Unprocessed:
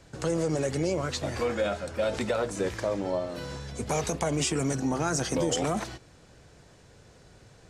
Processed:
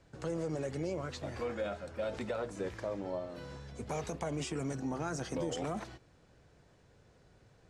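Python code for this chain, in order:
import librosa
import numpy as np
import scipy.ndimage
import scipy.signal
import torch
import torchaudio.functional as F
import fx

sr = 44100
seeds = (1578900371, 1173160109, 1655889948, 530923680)

y = fx.high_shelf(x, sr, hz=4300.0, db=-8.5)
y = y * 10.0 ** (-8.5 / 20.0)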